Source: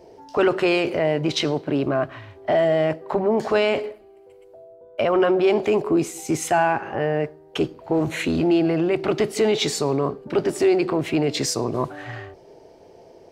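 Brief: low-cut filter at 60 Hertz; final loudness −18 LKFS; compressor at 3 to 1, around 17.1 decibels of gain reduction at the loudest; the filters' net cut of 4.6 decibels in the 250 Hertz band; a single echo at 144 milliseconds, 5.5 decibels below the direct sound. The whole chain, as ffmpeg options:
ffmpeg -i in.wav -af "highpass=60,equalizer=frequency=250:width_type=o:gain=-7.5,acompressor=threshold=-41dB:ratio=3,aecho=1:1:144:0.531,volume=20.5dB" out.wav

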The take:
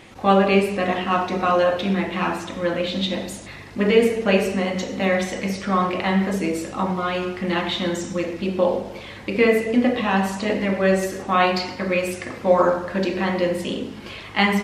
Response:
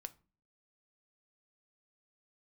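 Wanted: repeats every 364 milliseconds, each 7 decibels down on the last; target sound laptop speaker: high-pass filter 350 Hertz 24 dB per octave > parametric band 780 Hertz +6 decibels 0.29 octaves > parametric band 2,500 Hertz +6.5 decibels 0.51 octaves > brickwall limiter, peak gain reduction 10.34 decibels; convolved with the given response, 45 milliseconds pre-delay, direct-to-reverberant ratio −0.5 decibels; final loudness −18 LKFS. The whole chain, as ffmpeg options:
-filter_complex "[0:a]aecho=1:1:364|728|1092|1456|1820:0.447|0.201|0.0905|0.0407|0.0183,asplit=2[link_01][link_02];[1:a]atrim=start_sample=2205,adelay=45[link_03];[link_02][link_03]afir=irnorm=-1:irlink=0,volume=5.5dB[link_04];[link_01][link_04]amix=inputs=2:normalize=0,highpass=frequency=350:width=0.5412,highpass=frequency=350:width=1.3066,equalizer=frequency=780:width_type=o:width=0.29:gain=6,equalizer=frequency=2500:width_type=o:width=0.51:gain=6.5,volume=1.5dB,alimiter=limit=-8.5dB:level=0:latency=1"

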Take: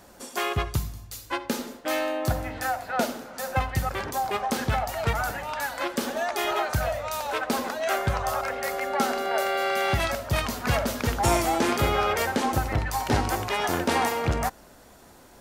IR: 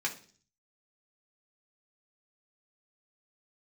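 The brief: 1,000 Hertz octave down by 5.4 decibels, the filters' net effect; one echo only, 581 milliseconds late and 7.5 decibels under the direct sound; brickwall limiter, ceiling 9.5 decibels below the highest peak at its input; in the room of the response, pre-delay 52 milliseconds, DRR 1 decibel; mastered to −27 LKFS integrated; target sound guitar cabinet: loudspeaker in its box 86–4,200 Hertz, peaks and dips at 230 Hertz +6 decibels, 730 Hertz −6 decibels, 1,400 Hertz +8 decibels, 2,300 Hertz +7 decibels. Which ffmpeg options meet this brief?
-filter_complex "[0:a]equalizer=frequency=1000:width_type=o:gain=-9,alimiter=limit=-22dB:level=0:latency=1,aecho=1:1:581:0.422,asplit=2[link_01][link_02];[1:a]atrim=start_sample=2205,adelay=52[link_03];[link_02][link_03]afir=irnorm=-1:irlink=0,volume=-6.5dB[link_04];[link_01][link_04]amix=inputs=2:normalize=0,highpass=86,equalizer=frequency=230:width_type=q:width=4:gain=6,equalizer=frequency=730:width_type=q:width=4:gain=-6,equalizer=frequency=1400:width_type=q:width=4:gain=8,equalizer=frequency=2300:width_type=q:width=4:gain=7,lowpass=frequency=4200:width=0.5412,lowpass=frequency=4200:width=1.3066,volume=1dB"

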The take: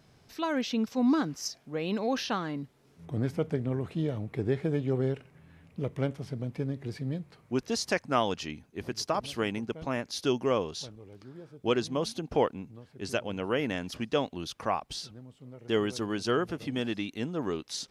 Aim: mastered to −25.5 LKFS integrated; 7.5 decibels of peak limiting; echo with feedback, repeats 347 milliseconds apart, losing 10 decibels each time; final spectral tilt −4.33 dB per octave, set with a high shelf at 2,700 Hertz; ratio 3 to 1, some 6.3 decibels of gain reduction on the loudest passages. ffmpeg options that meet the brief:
ffmpeg -i in.wav -af "highshelf=frequency=2700:gain=7.5,acompressor=threshold=-29dB:ratio=3,alimiter=level_in=1dB:limit=-24dB:level=0:latency=1,volume=-1dB,aecho=1:1:347|694|1041|1388:0.316|0.101|0.0324|0.0104,volume=10.5dB" out.wav

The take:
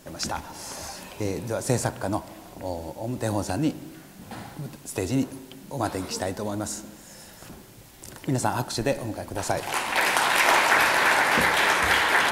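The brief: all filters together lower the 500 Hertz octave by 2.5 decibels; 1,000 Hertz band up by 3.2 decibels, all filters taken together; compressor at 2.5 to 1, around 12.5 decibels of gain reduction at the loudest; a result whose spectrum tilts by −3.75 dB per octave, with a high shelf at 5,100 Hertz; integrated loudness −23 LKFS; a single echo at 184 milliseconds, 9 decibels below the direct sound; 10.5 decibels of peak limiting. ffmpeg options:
ffmpeg -i in.wav -af "equalizer=frequency=500:width_type=o:gain=-5,equalizer=frequency=1000:width_type=o:gain=5,highshelf=frequency=5100:gain=6,acompressor=threshold=-33dB:ratio=2.5,alimiter=limit=-22dB:level=0:latency=1,aecho=1:1:184:0.355,volume=11dB" out.wav

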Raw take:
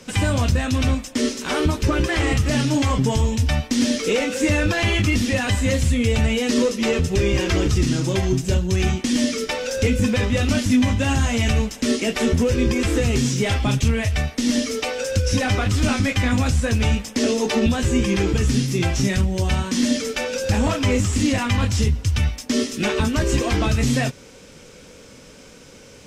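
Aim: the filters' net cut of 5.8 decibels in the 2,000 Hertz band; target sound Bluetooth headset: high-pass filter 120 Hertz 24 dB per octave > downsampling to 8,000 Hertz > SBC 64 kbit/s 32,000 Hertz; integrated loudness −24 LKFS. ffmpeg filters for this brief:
ffmpeg -i in.wav -af "highpass=frequency=120:width=0.5412,highpass=frequency=120:width=1.3066,equalizer=frequency=2000:width_type=o:gain=-7.5,aresample=8000,aresample=44100,volume=-1dB" -ar 32000 -c:a sbc -b:a 64k out.sbc

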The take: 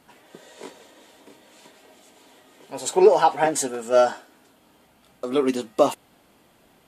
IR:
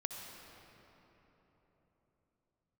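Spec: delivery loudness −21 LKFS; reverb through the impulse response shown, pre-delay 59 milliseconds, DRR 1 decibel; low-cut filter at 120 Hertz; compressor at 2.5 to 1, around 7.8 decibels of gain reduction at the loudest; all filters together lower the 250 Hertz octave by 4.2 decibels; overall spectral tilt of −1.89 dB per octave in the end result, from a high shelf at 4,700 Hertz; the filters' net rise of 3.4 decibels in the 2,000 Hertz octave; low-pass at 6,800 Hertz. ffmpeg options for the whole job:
-filter_complex "[0:a]highpass=120,lowpass=6800,equalizer=frequency=250:width_type=o:gain=-6.5,equalizer=frequency=2000:width_type=o:gain=3.5,highshelf=frequency=4700:gain=9,acompressor=threshold=-23dB:ratio=2.5,asplit=2[link_01][link_02];[1:a]atrim=start_sample=2205,adelay=59[link_03];[link_02][link_03]afir=irnorm=-1:irlink=0,volume=-1dB[link_04];[link_01][link_04]amix=inputs=2:normalize=0,volume=5.5dB"

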